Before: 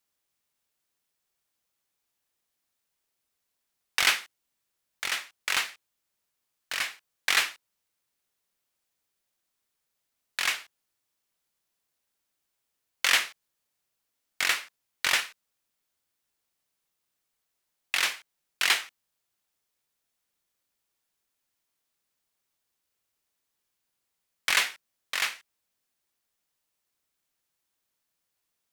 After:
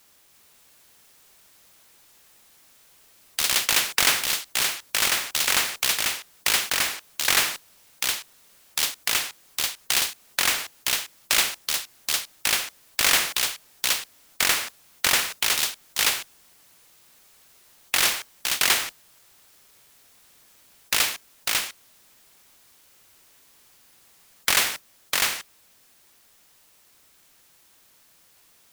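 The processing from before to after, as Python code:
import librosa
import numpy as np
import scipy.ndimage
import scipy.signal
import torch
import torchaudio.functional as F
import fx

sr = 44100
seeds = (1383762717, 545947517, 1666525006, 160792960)

y = fx.mod_noise(x, sr, seeds[0], snr_db=20)
y = fx.echo_pitch(y, sr, ms=340, semitones=3, count=3, db_per_echo=-3.0)
y = fx.spectral_comp(y, sr, ratio=2.0)
y = y * 10.0 ** (6.0 / 20.0)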